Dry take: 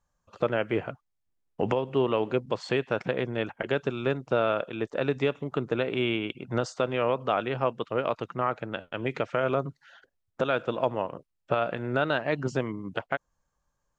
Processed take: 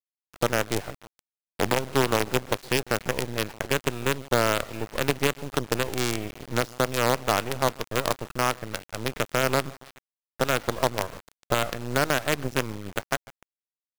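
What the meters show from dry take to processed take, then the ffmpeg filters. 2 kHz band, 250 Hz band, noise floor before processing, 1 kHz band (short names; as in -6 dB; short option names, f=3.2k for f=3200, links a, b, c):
+4.5 dB, +0.5 dB, -79 dBFS, +3.5 dB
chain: -filter_complex "[0:a]acrossover=split=3100[a][b];[b]acompressor=threshold=-51dB:ratio=4:attack=1:release=60[c];[a][c]amix=inputs=2:normalize=0,aecho=1:1:147|294|441|588|735:0.106|0.0625|0.0369|0.0218|0.0128,acrusher=bits=4:dc=4:mix=0:aa=0.000001,volume=2dB"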